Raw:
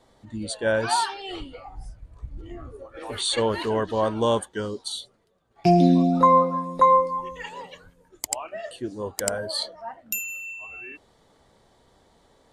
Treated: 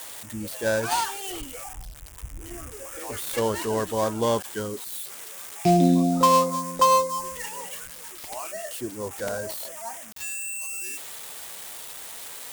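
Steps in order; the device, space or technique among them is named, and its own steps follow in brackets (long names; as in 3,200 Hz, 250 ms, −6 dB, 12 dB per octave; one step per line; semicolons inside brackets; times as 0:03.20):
budget class-D amplifier (gap after every zero crossing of 0.11 ms; spike at every zero crossing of −20.5 dBFS)
level −1.5 dB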